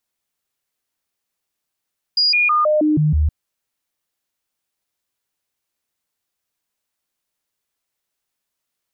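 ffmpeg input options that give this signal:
-f lavfi -i "aevalsrc='0.237*clip(min(mod(t,0.16),0.16-mod(t,0.16))/0.005,0,1)*sin(2*PI*4870*pow(2,-floor(t/0.16)/1)*mod(t,0.16))':d=1.12:s=44100"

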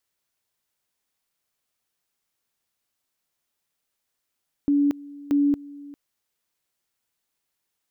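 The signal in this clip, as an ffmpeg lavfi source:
-f lavfi -i "aevalsrc='pow(10,(-16.5-21*gte(mod(t,0.63),0.23))/20)*sin(2*PI*286*t)':d=1.26:s=44100"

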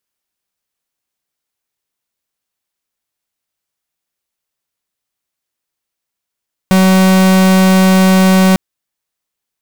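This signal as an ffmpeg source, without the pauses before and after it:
-f lavfi -i "aevalsrc='0.398*(2*lt(mod(188*t,1),0.44)-1)':d=1.85:s=44100"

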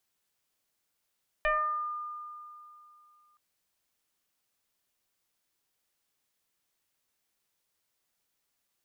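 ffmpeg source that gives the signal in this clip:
-f lavfi -i "aevalsrc='0.0708*pow(10,-3*t/2.8)*sin(2*PI*1210*t+2*pow(10,-3*t/0.66)*sin(2*PI*0.49*1210*t))':d=1.92:s=44100"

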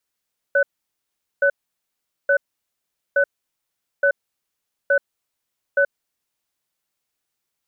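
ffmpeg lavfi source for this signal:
-f lavfi -i "aevalsrc='0.158*(sin(2*PI*562*t)+sin(2*PI*1500*t))*clip(min(mod(t,0.87),0.08-mod(t,0.87))/0.005,0,1)':d=5.56:s=44100"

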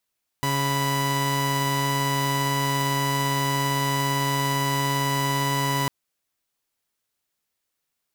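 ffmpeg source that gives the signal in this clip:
-f lavfi -i "aevalsrc='0.0794*((2*mod(138.59*t,1)-1)+(2*mod(987.77*t,1)-1))':d=5.45:s=44100"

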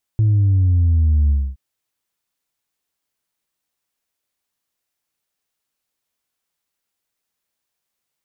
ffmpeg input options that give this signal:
-f lavfi -i "aevalsrc='0.251*clip((1.37-t)/0.26,0,1)*tanh(1.12*sin(2*PI*110*1.37/log(65/110)*(exp(log(65/110)*t/1.37)-1)))/tanh(1.12)':d=1.37:s=44100"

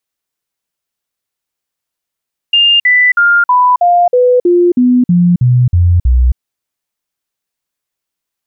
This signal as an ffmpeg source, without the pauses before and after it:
-f lavfi -i "aevalsrc='0.562*clip(min(mod(t,0.32),0.27-mod(t,0.32))/0.005,0,1)*sin(2*PI*2810*pow(2,-floor(t/0.32)/2)*mod(t,0.32))':d=3.84:s=44100"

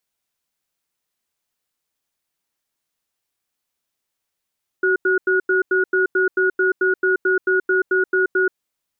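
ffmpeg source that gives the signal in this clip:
-f lavfi -i "aevalsrc='0.141*(sin(2*PI*375*t)+sin(2*PI*1450*t))*clip(min(mod(t,0.22),0.13-mod(t,0.22))/0.005,0,1)':d=3.71:s=44100"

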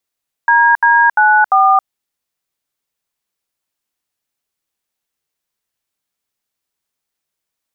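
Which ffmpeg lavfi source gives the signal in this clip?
-f lavfi -i "aevalsrc='0.335*clip(min(mod(t,0.346),0.272-mod(t,0.346))/0.002,0,1)*(eq(floor(t/0.346),0)*(sin(2*PI*941*mod(t,0.346))+sin(2*PI*1633*mod(t,0.346)))+eq(floor(t/0.346),1)*(sin(2*PI*941*mod(t,0.346))+sin(2*PI*1633*mod(t,0.346)))+eq(floor(t/0.346),2)*(sin(2*PI*852*mod(t,0.346))+sin(2*PI*1477*mod(t,0.346)))+eq(floor(t/0.346),3)*(sin(2*PI*770*mod(t,0.346))+sin(2*PI*1209*mod(t,0.346))))':d=1.384:s=44100"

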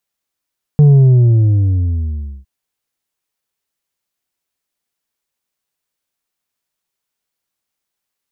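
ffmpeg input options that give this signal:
-f lavfi -i "aevalsrc='0.596*clip((1.66-t)/1.62,0,1)*tanh(1.68*sin(2*PI*150*1.66/log(65/150)*(exp(log(65/150)*t/1.66)-1)))/tanh(1.68)':d=1.66:s=44100"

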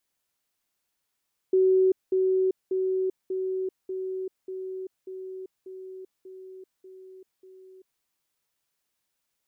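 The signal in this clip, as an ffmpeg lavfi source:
-f lavfi -i "aevalsrc='pow(10,(-17-3*floor(t/0.59))/20)*sin(2*PI*376*t)*clip(min(mod(t,0.59),0.39-mod(t,0.59))/0.005,0,1)':d=6.49:s=44100"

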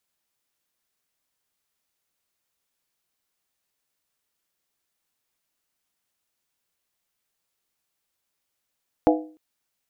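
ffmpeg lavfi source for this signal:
-f lavfi -i "aevalsrc='0.2*pow(10,-3*t/0.44)*sin(2*PI*311*t)+0.158*pow(10,-3*t/0.349)*sin(2*PI*495.7*t)+0.126*pow(10,-3*t/0.301)*sin(2*PI*664.3*t)+0.1*pow(10,-3*t/0.29)*sin(2*PI*714.1*t)+0.0794*pow(10,-3*t/0.27)*sin(2*PI*825.1*t)':d=0.3:s=44100"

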